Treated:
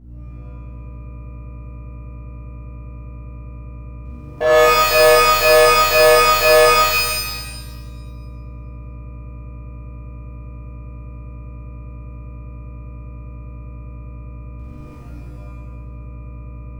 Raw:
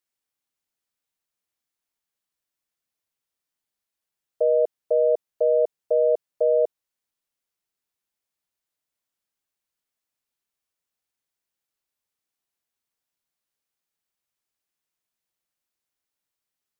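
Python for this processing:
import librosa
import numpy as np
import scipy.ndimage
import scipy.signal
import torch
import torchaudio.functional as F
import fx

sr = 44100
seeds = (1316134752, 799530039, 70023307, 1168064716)

y = fx.diode_clip(x, sr, knee_db=-14.5)
y = scipy.signal.sosfilt(scipy.signal.butter(2, 550.0, 'highpass', fs=sr, output='sos'), y)
y = fx.leveller(y, sr, passes=3)
y = fx.add_hum(y, sr, base_hz=60, snr_db=13)
y = fx.buffer_glitch(y, sr, at_s=(4.01, 14.55), block=2048, repeats=7)
y = fx.rev_shimmer(y, sr, seeds[0], rt60_s=1.2, semitones=12, shimmer_db=-2, drr_db=-9.5)
y = y * librosa.db_to_amplitude(-2.0)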